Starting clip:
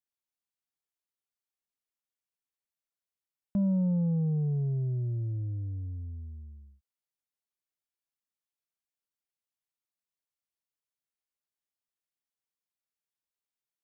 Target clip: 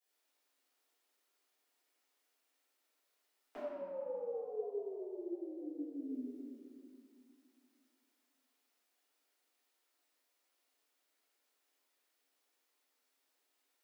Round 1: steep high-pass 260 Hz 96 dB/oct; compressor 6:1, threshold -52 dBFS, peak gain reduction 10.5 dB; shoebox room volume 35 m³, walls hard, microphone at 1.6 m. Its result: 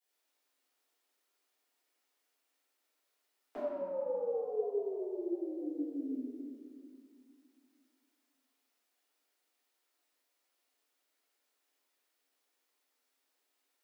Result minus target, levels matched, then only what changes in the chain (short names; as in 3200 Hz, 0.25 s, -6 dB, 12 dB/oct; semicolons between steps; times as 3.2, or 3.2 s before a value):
compressor: peak gain reduction -6 dB
change: compressor 6:1, threshold -59 dBFS, peak gain reduction 16.5 dB